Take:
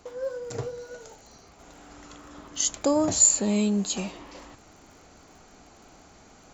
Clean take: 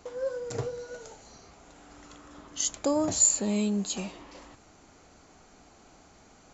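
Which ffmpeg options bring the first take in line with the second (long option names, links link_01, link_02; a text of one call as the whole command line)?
ffmpeg -i in.wav -af "adeclick=threshold=4,asetnsamples=nb_out_samples=441:pad=0,asendcmd='1.59 volume volume -3.5dB',volume=0dB" out.wav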